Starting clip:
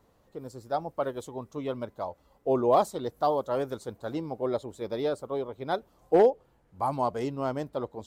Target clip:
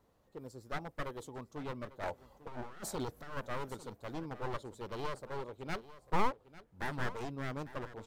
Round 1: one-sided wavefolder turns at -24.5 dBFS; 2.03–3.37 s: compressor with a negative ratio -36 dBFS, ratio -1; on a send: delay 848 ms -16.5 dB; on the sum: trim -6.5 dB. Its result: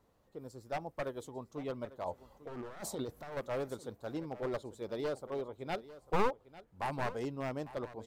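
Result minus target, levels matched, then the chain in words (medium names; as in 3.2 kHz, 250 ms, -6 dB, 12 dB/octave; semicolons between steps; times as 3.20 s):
one-sided wavefolder: distortion -11 dB
one-sided wavefolder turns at -33 dBFS; 2.03–3.37 s: compressor with a negative ratio -36 dBFS, ratio -1; on a send: delay 848 ms -16.5 dB; on the sum: trim -6.5 dB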